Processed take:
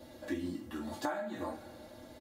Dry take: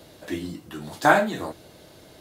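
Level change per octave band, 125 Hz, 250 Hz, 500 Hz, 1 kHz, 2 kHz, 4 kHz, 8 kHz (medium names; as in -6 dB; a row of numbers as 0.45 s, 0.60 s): -13.0 dB, -8.5 dB, -14.0 dB, -18.0 dB, -20.5 dB, -13.5 dB, -13.0 dB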